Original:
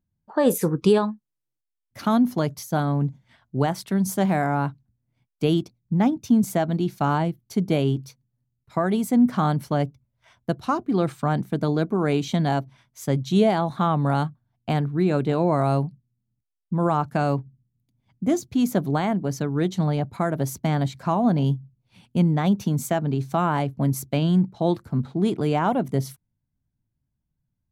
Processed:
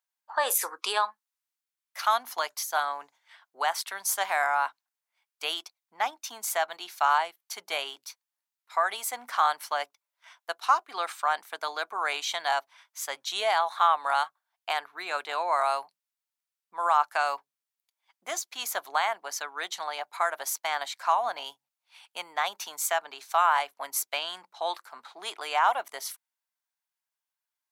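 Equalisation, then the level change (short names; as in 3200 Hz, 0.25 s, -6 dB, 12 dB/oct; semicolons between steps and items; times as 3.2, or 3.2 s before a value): HPF 870 Hz 24 dB/oct; +4.5 dB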